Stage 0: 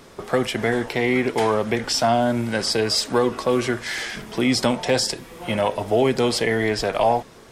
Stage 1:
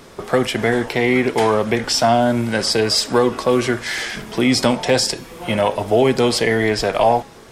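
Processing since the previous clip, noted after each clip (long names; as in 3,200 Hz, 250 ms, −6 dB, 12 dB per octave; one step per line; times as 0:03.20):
hum removal 274.3 Hz, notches 28
level +4 dB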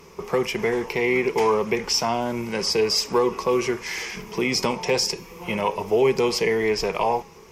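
EQ curve with evenly spaced ripples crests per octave 0.79, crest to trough 11 dB
level −7 dB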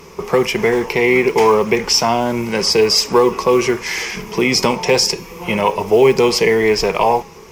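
noise that follows the level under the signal 34 dB
level +8 dB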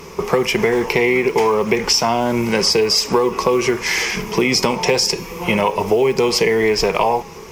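downward compressor, threshold −16 dBFS, peak gain reduction 9 dB
level +3.5 dB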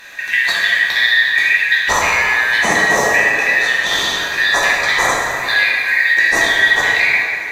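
band-splitting scrambler in four parts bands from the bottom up 4123
dense smooth reverb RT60 2.7 s, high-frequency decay 0.5×, DRR −5 dB
level −3.5 dB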